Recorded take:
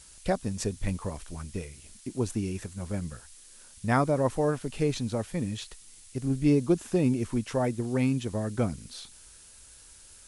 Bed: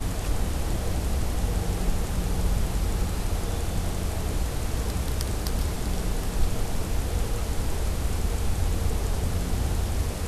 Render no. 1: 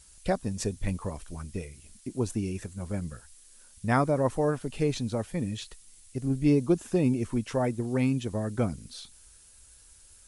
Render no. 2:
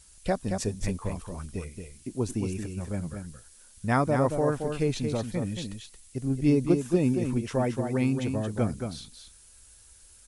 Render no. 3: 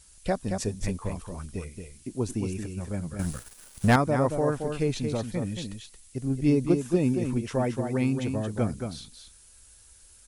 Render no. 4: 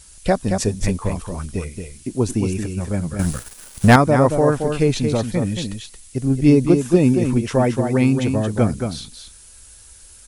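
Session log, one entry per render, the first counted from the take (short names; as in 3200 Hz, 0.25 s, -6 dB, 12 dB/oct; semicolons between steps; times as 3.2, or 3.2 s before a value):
denoiser 6 dB, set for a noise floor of -53 dBFS
echo 0.225 s -6.5 dB
3.19–3.96 sample leveller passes 3
gain +9.5 dB; limiter -2 dBFS, peak gain reduction 2 dB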